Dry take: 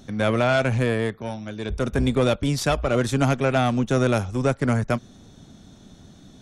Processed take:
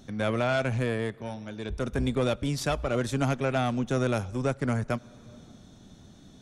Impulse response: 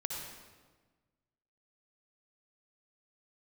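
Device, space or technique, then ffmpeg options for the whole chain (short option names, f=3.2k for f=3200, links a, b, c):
ducked reverb: -filter_complex "[0:a]asplit=3[a][b][c];[1:a]atrim=start_sample=2205[d];[b][d]afir=irnorm=-1:irlink=0[e];[c]apad=whole_len=282695[f];[e][f]sidechaincompress=threshold=-34dB:ratio=8:attack=10:release=373,volume=-9dB[g];[a][g]amix=inputs=2:normalize=0,volume=-6.5dB"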